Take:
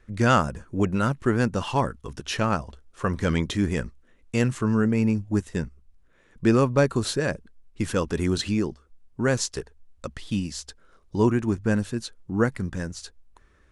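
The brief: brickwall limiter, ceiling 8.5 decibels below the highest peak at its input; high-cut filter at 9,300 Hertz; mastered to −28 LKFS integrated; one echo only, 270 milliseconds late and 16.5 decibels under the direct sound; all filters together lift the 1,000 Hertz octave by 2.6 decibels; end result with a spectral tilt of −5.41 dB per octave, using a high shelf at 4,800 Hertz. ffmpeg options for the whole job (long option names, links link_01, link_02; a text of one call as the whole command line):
ffmpeg -i in.wav -af "lowpass=9300,equalizer=frequency=1000:width_type=o:gain=3,highshelf=frequency=4800:gain=5.5,alimiter=limit=-12.5dB:level=0:latency=1,aecho=1:1:270:0.15,volume=-2dB" out.wav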